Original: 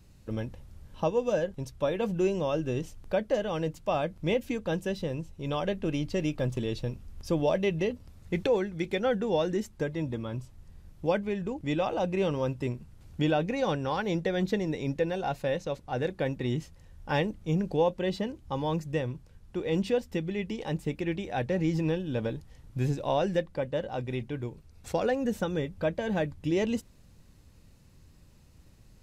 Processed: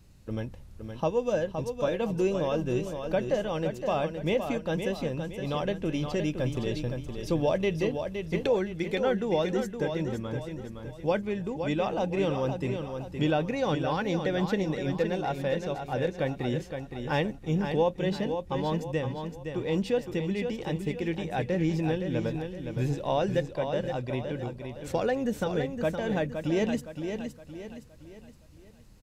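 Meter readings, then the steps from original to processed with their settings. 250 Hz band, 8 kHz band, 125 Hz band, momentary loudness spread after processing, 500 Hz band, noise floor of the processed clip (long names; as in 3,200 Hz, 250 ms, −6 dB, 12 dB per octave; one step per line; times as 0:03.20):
+1.0 dB, +1.0 dB, +1.0 dB, 8 LU, +1.0 dB, −49 dBFS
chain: repeating echo 516 ms, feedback 41%, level −7 dB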